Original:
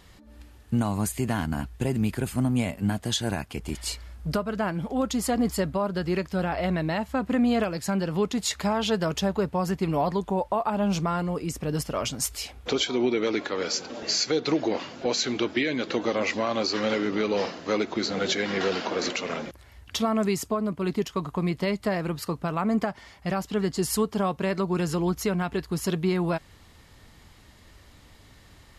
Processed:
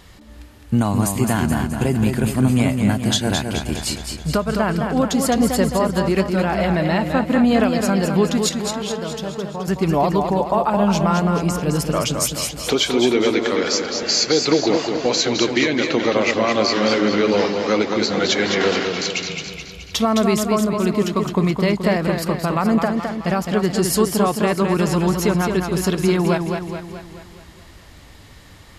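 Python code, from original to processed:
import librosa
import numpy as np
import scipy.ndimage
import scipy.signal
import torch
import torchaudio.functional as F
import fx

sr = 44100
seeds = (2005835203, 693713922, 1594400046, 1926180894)

y = fx.comb_fb(x, sr, f0_hz=150.0, decay_s=0.82, harmonics='odd', damping=0.0, mix_pct=70, at=(8.49, 9.68))
y = fx.spec_erase(y, sr, start_s=18.84, length_s=1.09, low_hz=200.0, high_hz=2100.0)
y = fx.echo_warbled(y, sr, ms=213, feedback_pct=54, rate_hz=2.8, cents=70, wet_db=-5.5)
y = y * librosa.db_to_amplitude(7.0)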